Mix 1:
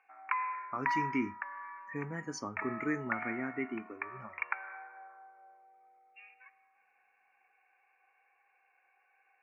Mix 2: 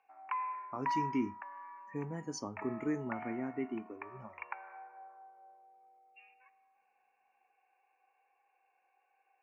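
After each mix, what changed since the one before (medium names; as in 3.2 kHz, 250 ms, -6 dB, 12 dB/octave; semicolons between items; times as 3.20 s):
master: add high-order bell 1.7 kHz -10.5 dB 1.2 oct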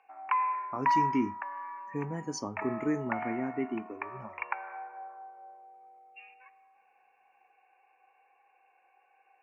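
speech +4.5 dB; background +8.5 dB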